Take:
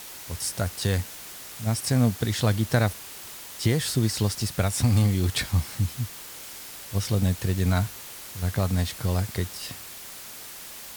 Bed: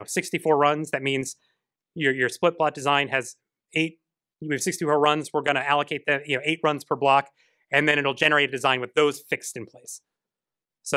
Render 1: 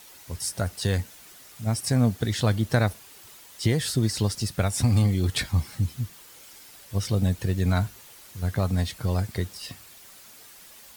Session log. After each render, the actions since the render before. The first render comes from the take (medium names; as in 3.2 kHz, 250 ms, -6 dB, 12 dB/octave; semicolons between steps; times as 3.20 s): noise reduction 9 dB, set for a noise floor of -41 dBFS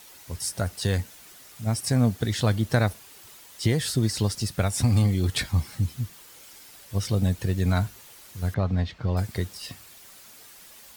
8.54–9.17 s: distance through air 200 m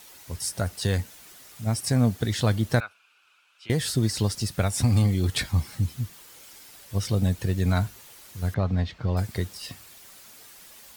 2.80–3.70 s: two resonant band-passes 1.9 kHz, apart 0.79 oct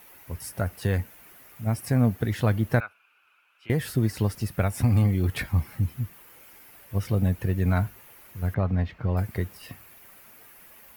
high-order bell 5.5 kHz -12 dB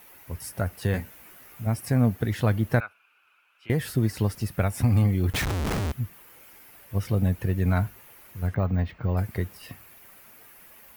0.92–1.67 s: doubling 16 ms -4 dB; 5.33–5.92 s: Schmitt trigger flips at -41 dBFS; 8.47–9.15 s: careless resampling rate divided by 2×, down filtered, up hold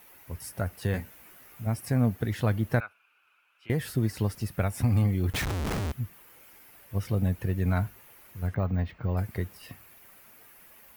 trim -3 dB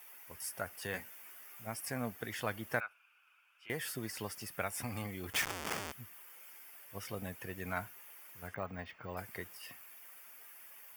high-pass 1.2 kHz 6 dB/octave; band-stop 4 kHz, Q 5.7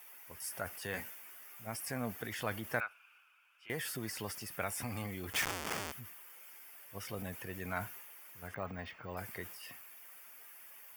transient shaper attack -1 dB, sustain +5 dB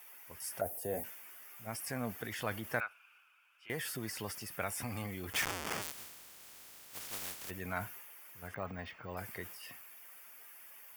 0.61–1.04 s: FFT filter 170 Hz 0 dB, 690 Hz +9 dB, 1.1 kHz -14 dB, 4 kHz -14 dB, 11 kHz +6 dB; 5.81–7.49 s: spectral contrast reduction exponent 0.13